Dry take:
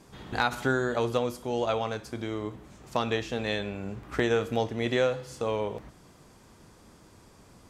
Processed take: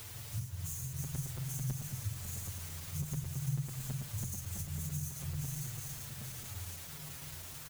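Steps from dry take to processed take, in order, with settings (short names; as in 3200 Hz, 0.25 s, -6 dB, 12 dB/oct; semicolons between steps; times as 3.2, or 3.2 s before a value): spectrum mirrored in octaves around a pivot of 710 Hz; sample-rate reducer 5300 Hz, jitter 20%; Chebyshev band-stop 140–6300 Hz, order 4; added noise white -49 dBFS; echo with dull and thin repeats by turns 0.415 s, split 2400 Hz, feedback 72%, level -5.5 dB; compressor 6:1, threshold -37 dBFS, peak gain reduction 11 dB; low shelf 150 Hz +6.5 dB; upward compressor, threshold -48 dBFS; crackling interface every 0.11 s, samples 256, zero, from 0.93; endless flanger 6.4 ms -0.48 Hz; gain +3 dB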